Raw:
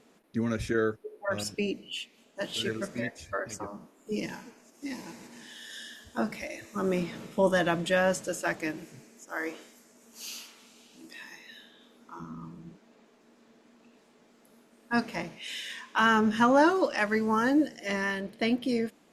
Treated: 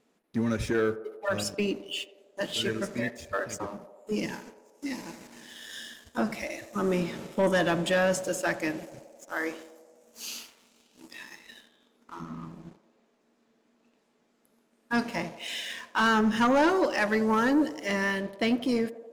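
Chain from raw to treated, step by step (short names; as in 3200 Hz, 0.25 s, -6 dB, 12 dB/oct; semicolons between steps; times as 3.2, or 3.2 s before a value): sample leveller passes 2; narrowing echo 87 ms, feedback 79%, band-pass 600 Hz, level -14 dB; gain -5 dB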